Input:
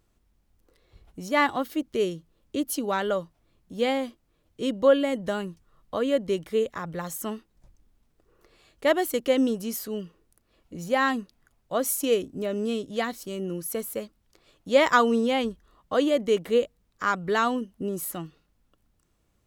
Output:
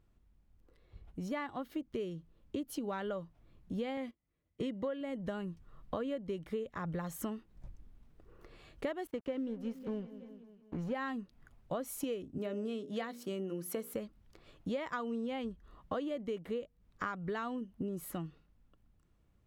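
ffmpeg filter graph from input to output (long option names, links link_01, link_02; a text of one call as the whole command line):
ffmpeg -i in.wav -filter_complex "[0:a]asettb=1/sr,asplit=3[link_01][link_02][link_03];[link_01]atrim=end=3.974[link_04];[link_02]atrim=start=3.97:end=5.01,asetpts=PTS-STARTPTS,afade=type=in:duration=0.004:curve=qsin,afade=type=out:start_time=1.036:duration=0.004:curve=qsin,agate=range=-17dB:threshold=-42dB:ratio=16:release=100:detection=peak,highpass=49,equalizer=frequency=2000:width=7.8:gain=12.5[link_05];[link_03]atrim=start=5.006[link_06];[link_04][link_05]acrossfade=duration=0.004:curve1=hsin:curve2=qsin[link_07];[link_07][link_06]acrossfade=duration=0.004:curve1=qsin:curve2=hsin,asettb=1/sr,asplit=3[link_08][link_09][link_10];[link_08]atrim=end=9.074[link_11];[link_09]atrim=start=9.07:end=10.95,asetpts=PTS-STARTPTS,afade=type=in:duration=0.004:curve=qsin,afade=type=out:start_time=1.876:duration=0.004:curve=qsin,equalizer=frequency=12000:width=0.3:gain=-14.5,aeval=exprs='sgn(val(0))*max(abs(val(0))-0.00596,0)':channel_layout=same,aecho=1:1:184|368|552|736|920:0.0891|0.0535|0.0321|0.0193|0.0116,atrim=end_sample=82908[link_12];[link_10]atrim=start=10.946[link_13];[link_11][link_12]acrossfade=duration=0.004:curve1=hsin:curve2=qsin[link_14];[link_14][link_13]acrossfade=duration=0.004:curve1=qsin:curve2=hsin,asettb=1/sr,asplit=3[link_15][link_16][link_17];[link_15]atrim=end=12.384[link_18];[link_16]atrim=start=12.38:end=13.94,asetpts=PTS-STARTPTS,afade=type=in:duration=0.004:curve=qsin,afade=type=out:start_time=1.556:duration=0.004:curve=qsin,highpass=220,bandreject=frequency=60:width_type=h:width=6,bandreject=frequency=120:width_type=h:width=6,bandreject=frequency=180:width_type=h:width=6,bandreject=frequency=240:width_type=h:width=6,bandreject=frequency=300:width_type=h:width=6,bandreject=frequency=360:width_type=h:width=6,bandreject=frequency=420:width_type=h:width=6,bandreject=frequency=480:width_type=h:width=6,bandreject=frequency=540:width_type=h:width=6,bandreject=frequency=600:width_type=h:width=6[link_19];[link_17]atrim=start=13.936[link_20];[link_18][link_19]acrossfade=duration=0.004:curve1=hsin:curve2=qsin[link_21];[link_21][link_20]acrossfade=duration=0.004:curve1=qsin:curve2=hsin,dynaudnorm=framelen=720:gausssize=9:maxgain=11.5dB,bass=frequency=250:gain=6,treble=frequency=4000:gain=-9,acompressor=threshold=-29dB:ratio=12,volume=-5.5dB" out.wav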